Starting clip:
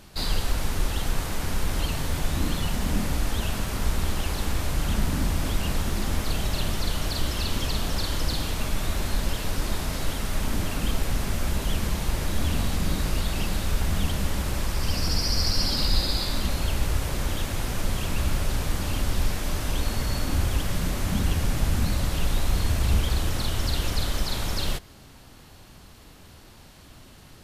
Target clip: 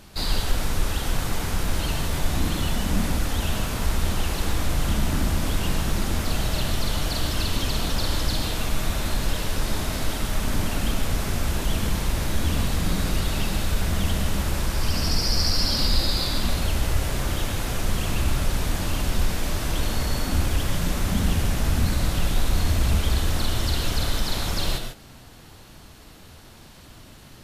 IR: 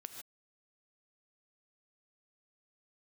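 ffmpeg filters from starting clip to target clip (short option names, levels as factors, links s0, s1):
-filter_complex "[0:a]acontrast=83[s0];[1:a]atrim=start_sample=2205[s1];[s0][s1]afir=irnorm=-1:irlink=0"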